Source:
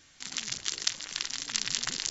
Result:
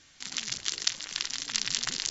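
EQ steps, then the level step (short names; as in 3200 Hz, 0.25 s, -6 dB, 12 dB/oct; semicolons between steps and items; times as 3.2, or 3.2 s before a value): air absorption 71 m; high shelf 4000 Hz +7.5 dB; 0.0 dB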